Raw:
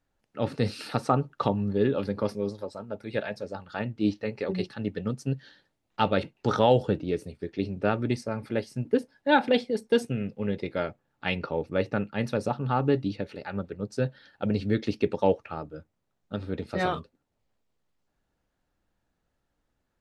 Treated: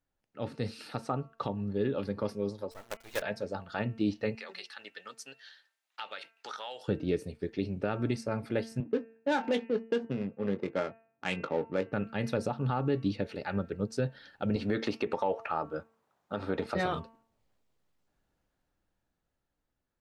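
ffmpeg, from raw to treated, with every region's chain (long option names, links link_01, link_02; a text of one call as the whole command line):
ffmpeg -i in.wav -filter_complex "[0:a]asettb=1/sr,asplit=3[link_01][link_02][link_03];[link_01]atrim=end=2.714[link_04];[link_02]atrim=start=2.71:end=3.22,asetpts=PTS-STARTPTS,afade=type=in:duration=0.004:curve=qsin,afade=type=out:start_time=0.506:duration=0.004:curve=qsin,highpass=580,acrusher=bits=6:dc=4:mix=0:aa=0.000001[link_05];[link_03]atrim=start=3.216[link_06];[link_04][link_05]acrossfade=duration=0.004:curve1=hsin:curve2=qsin[link_07];[link_07][link_06]acrossfade=duration=0.004:curve1=qsin:curve2=hsin,asettb=1/sr,asplit=3[link_08][link_09][link_10];[link_08]atrim=end=4.354[link_11];[link_09]atrim=start=4.35:end=6.88,asetpts=PTS-STARTPTS,afade=type=in:duration=0.004:curve=qsin,afade=type=out:start_time=2.526:duration=0.004:curve=qsin,highpass=1300,acompressor=threshold=-40dB:ratio=3:attack=3.2:release=140:knee=1:detection=peak[link_12];[link_10]atrim=start=6.876[link_13];[link_11][link_12]acrossfade=duration=0.004:curve1=hsin:curve2=qsin[link_14];[link_14][link_13]acrossfade=duration=0.004:curve1=qsin:curve2=hsin,asettb=1/sr,asplit=3[link_15][link_16][link_17];[link_15]atrim=end=8.804[link_18];[link_16]atrim=start=8.8:end=11.93,asetpts=PTS-STARTPTS,afade=type=in:duration=0.004:curve=qsin,afade=type=out:start_time=3.126:duration=0.004:curve=qsin,adynamicsmooth=sensitivity=5:basefreq=530,highpass=170,lowpass=5500,asplit=2[link_19][link_20];[link_20]adelay=21,volume=-12dB[link_21];[link_19][link_21]amix=inputs=2:normalize=0,atrim=end_sample=138033[link_22];[link_17]atrim=start=11.926[link_23];[link_18][link_22]acrossfade=duration=0.004:curve1=hsin:curve2=qsin[link_24];[link_24][link_23]acrossfade=duration=0.004:curve1=qsin:curve2=hsin,asettb=1/sr,asplit=3[link_25][link_26][link_27];[link_25]atrim=end=14.564[link_28];[link_26]atrim=start=14.56:end=16.75,asetpts=PTS-STARTPTS,afade=type=in:duration=0.004:curve=qsin,afade=type=out:start_time=2.186:duration=0.004:curve=qsin,highpass=frequency=180:poles=1,equalizer=frequency=980:width=0.84:gain=11.5,acompressor=threshold=-27dB:ratio=2:attack=3.2:release=140:knee=1:detection=peak[link_29];[link_27]atrim=start=16.746[link_30];[link_28][link_29]acrossfade=duration=0.004:curve1=hsin:curve2=qsin[link_31];[link_31][link_30]acrossfade=duration=0.004:curve1=qsin:curve2=hsin,bandreject=frequency=225.4:width_type=h:width=4,bandreject=frequency=450.8:width_type=h:width=4,bandreject=frequency=676.2:width_type=h:width=4,bandreject=frequency=901.6:width_type=h:width=4,bandreject=frequency=1127:width_type=h:width=4,bandreject=frequency=1352.4:width_type=h:width=4,bandreject=frequency=1577.8:width_type=h:width=4,bandreject=frequency=1803.2:width_type=h:width=4,bandreject=frequency=2028.6:width_type=h:width=4,bandreject=frequency=2254:width_type=h:width=4,bandreject=frequency=2479.4:width_type=h:width=4,bandreject=frequency=2704.8:width_type=h:width=4,bandreject=frequency=2930.2:width_type=h:width=4,dynaudnorm=framelen=520:gausssize=9:maxgain=11.5dB,alimiter=limit=-11dB:level=0:latency=1:release=150,volume=-8dB" out.wav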